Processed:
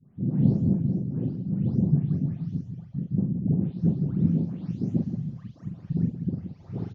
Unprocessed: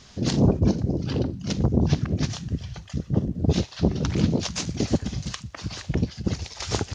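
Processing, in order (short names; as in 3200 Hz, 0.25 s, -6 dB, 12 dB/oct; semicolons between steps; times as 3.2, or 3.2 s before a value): spectral delay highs late, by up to 0.356 s; band-pass 170 Hz, Q 2.1; tapped delay 42/175 ms -4.5/-9.5 dB; gain +1.5 dB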